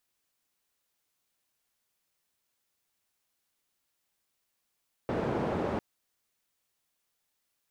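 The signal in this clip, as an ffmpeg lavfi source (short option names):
-f lavfi -i "anoisesrc=c=white:d=0.7:r=44100:seed=1,highpass=f=89,lowpass=f=560,volume=-10dB"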